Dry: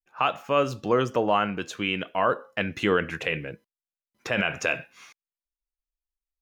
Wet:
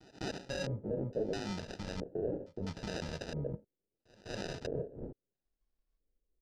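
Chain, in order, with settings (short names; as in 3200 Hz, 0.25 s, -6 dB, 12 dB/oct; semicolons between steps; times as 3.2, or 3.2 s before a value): block floating point 3-bit; tone controls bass +2 dB, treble -10 dB; comb 1.4 ms, depth 82%; reverse; compressor 6:1, threshold -37 dBFS, peak gain reduction 20 dB; reverse; limiter -34 dBFS, peak gain reduction 10.5 dB; sample-rate reducer 1100 Hz, jitter 0%; LFO low-pass square 0.75 Hz 440–5200 Hz; on a send: reverse echo 0.203 s -22 dB; on the sum: gain +4 dB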